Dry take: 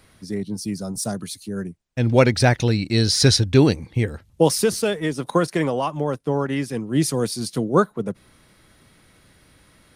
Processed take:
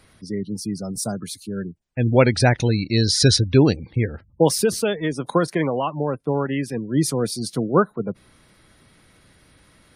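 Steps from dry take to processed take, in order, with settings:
gate on every frequency bin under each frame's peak −30 dB strong

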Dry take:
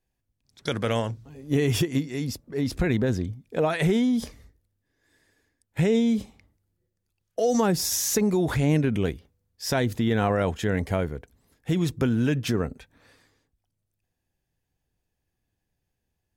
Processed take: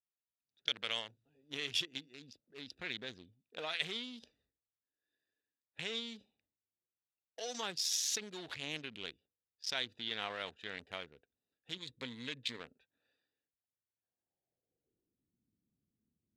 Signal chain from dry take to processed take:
adaptive Wiener filter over 41 samples
band-pass filter sweep 3,600 Hz → 230 Hz, 0:13.29–0:15.31
0:11.77–0:12.60: EQ curve with evenly spaced ripples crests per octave 1, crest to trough 9 dB
level +4 dB

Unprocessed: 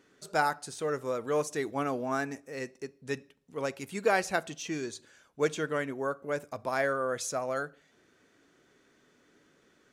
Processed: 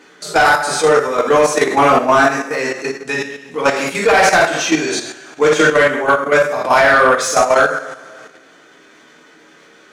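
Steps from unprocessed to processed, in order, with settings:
coupled-rooms reverb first 0.63 s, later 2 s, from −18 dB, DRR −6 dB
mid-hump overdrive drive 19 dB, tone 4,000 Hz, clips at −5.5 dBFS
output level in coarse steps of 9 dB
level +8 dB

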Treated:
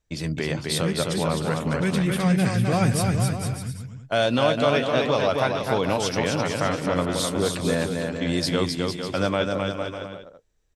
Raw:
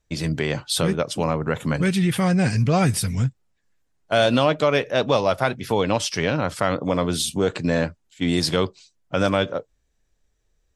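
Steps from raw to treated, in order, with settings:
bouncing-ball delay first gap 260 ms, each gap 0.75×, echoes 5
level −3.5 dB

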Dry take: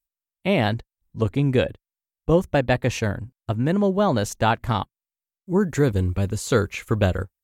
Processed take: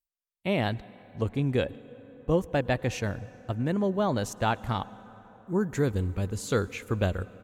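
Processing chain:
on a send: comb filter 4 ms, depth 44% + convolution reverb RT60 5.2 s, pre-delay 91 ms, DRR 18.5 dB
on the sum: level −6.5 dB

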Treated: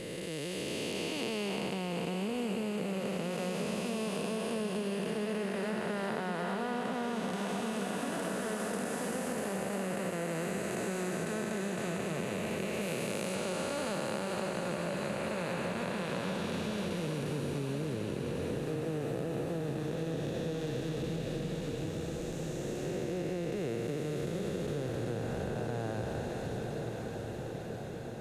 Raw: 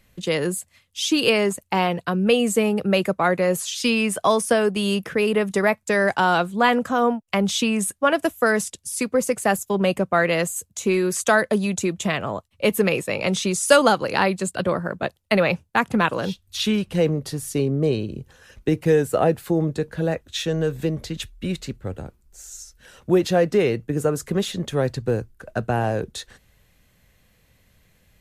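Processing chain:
spectrum smeared in time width 1,080 ms
0:12.81–0:13.35: high-shelf EQ 8,600 Hz +7.5 dB
feedback delay with all-pass diffusion 1,043 ms, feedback 68%, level −7.5 dB
downward compressor, threshold −29 dBFS, peak gain reduction 9 dB
level −2.5 dB

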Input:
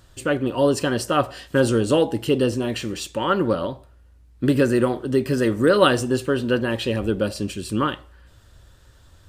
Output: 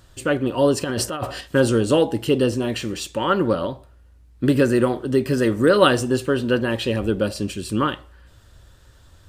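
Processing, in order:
0:00.84–0:01.41: compressor whose output falls as the input rises −26 dBFS, ratio −1
level +1 dB

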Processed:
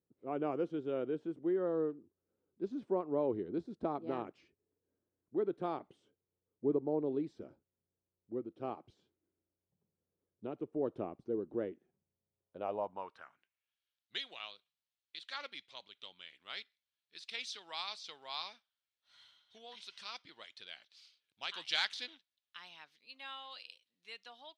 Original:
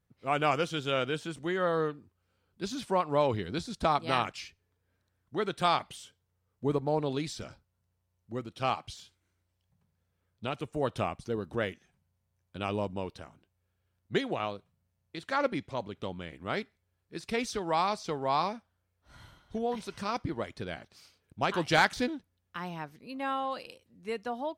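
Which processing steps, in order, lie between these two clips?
0:21.76–0:22.16: hum with harmonics 100 Hz, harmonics 34, −54 dBFS −3 dB per octave
band-pass filter sweep 350 Hz → 3,600 Hz, 0:12.33–0:13.80
level +1 dB

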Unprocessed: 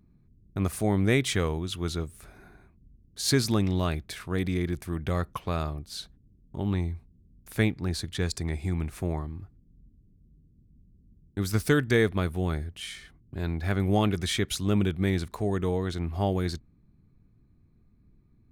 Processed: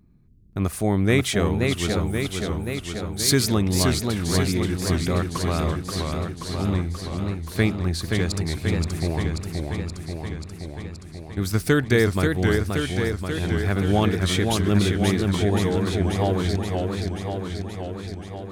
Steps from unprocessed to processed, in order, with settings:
0:02.01–0:03.49: high-shelf EQ 7,500 Hz +8.5 dB
feedback echo with a swinging delay time 530 ms, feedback 70%, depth 163 cents, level −4 dB
level +3.5 dB

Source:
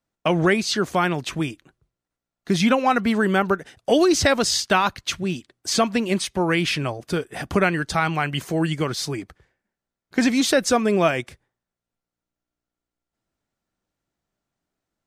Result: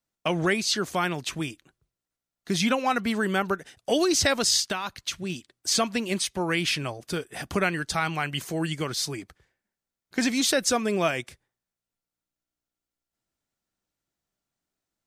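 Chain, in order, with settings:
high-shelf EQ 2,700 Hz +8 dB
0:04.66–0:05.30: downward compressor 6 to 1, threshold −20 dBFS, peak gain reduction 8.5 dB
level −6.5 dB

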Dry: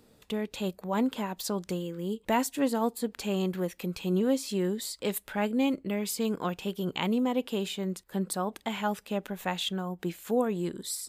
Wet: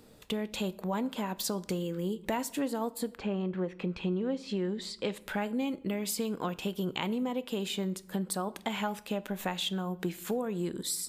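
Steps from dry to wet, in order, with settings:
0:03.14–0:05.20: low-pass filter 1,900 Hz → 4,800 Hz 12 dB per octave
downward compressor 5 to 1, threshold −33 dBFS, peak gain reduction 11 dB
convolution reverb RT60 0.70 s, pre-delay 6 ms, DRR 15.5 dB
level +3.5 dB

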